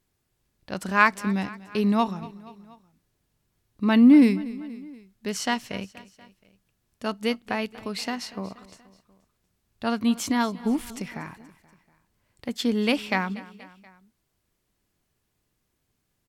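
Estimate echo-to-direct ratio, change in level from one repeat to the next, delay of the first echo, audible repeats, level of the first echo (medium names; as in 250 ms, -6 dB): -17.5 dB, -4.5 dB, 239 ms, 3, -19.0 dB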